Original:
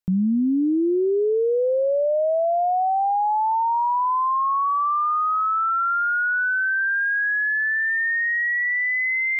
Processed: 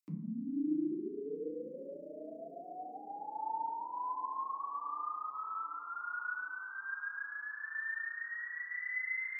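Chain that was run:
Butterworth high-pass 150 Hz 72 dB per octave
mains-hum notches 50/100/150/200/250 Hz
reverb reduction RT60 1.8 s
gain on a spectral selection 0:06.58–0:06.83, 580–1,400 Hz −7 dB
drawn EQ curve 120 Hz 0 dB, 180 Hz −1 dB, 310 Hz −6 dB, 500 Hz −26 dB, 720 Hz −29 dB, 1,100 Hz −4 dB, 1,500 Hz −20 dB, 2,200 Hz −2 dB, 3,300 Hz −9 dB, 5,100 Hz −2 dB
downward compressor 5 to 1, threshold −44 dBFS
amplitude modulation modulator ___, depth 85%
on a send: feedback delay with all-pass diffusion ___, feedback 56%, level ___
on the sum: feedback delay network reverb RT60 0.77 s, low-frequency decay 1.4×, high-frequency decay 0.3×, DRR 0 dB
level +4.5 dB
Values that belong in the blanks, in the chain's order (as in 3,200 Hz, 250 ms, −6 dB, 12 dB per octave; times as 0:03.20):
28 Hz, 733 ms, −13 dB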